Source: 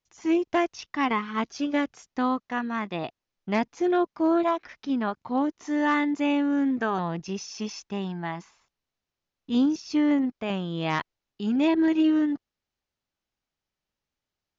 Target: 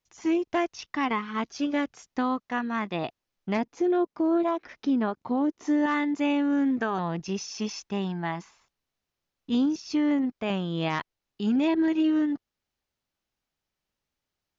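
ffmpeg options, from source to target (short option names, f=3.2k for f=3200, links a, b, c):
-filter_complex "[0:a]asettb=1/sr,asplit=3[a][b][c];[a]atrim=end=3.574[d];[b]atrim=start=3.57:end=5.86,asetpts=PTS-STARTPTS,afade=t=in:d=0.004:c=qsin,afade=t=out:st=2.286:d=0.004:c=qsin,equalizer=f=350:w=0.65:g=7[e];[c]atrim=start=5.856[f];[d][e]acrossfade=d=0.004:c1=hsin:c2=qsin[g];[g][f]acrossfade=d=0.004:c1=qsin:c2=hsin,alimiter=limit=-19.5dB:level=0:latency=1:release=392,volume=1.5dB"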